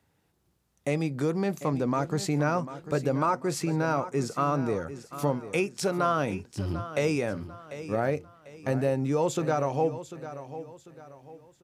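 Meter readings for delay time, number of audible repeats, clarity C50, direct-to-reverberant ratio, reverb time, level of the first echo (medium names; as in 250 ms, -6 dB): 745 ms, 3, no reverb, no reverb, no reverb, -13.0 dB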